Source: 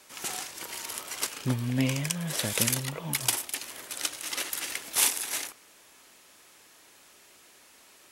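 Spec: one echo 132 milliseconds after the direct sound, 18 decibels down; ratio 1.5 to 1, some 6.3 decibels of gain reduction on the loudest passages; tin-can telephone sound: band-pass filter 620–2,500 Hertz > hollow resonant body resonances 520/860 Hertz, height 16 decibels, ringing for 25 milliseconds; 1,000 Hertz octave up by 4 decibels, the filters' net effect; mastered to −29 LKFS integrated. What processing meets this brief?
parametric band 1,000 Hz +6 dB
downward compressor 1.5 to 1, threshold −37 dBFS
band-pass filter 620–2,500 Hz
single-tap delay 132 ms −18 dB
hollow resonant body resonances 520/860 Hz, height 16 dB, ringing for 25 ms
level +6 dB

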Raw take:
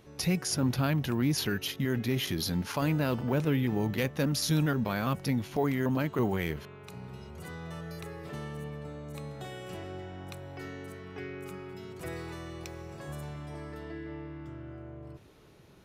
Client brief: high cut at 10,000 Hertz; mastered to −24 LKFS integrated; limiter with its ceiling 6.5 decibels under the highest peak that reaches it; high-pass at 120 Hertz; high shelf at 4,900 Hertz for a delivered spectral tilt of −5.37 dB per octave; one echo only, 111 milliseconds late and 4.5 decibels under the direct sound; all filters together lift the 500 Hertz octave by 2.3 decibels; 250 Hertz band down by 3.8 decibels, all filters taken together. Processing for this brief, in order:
high-pass filter 120 Hz
low-pass filter 10,000 Hz
parametric band 250 Hz −6 dB
parametric band 500 Hz +5 dB
high-shelf EQ 4,900 Hz −6 dB
brickwall limiter −22.5 dBFS
single-tap delay 111 ms −4.5 dB
level +11 dB

